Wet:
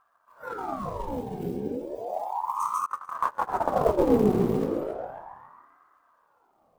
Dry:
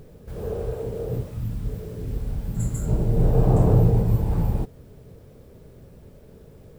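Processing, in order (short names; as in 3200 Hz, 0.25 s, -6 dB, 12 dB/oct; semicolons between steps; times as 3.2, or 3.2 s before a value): split-band echo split 360 Hz, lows 0.135 s, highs 0.301 s, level -4.5 dB; in parallel at -7.5 dB: companded quantiser 4-bit; on the sum: spectral noise reduction 17 dB; on a send: darkening echo 0.273 s, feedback 37%, low-pass 2100 Hz, level -4.5 dB; 2.86–4.1 on the sum: gate -11 dBFS, range -27 dB; ring modulator with a swept carrier 730 Hz, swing 60%, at 0.34 Hz; gain -6 dB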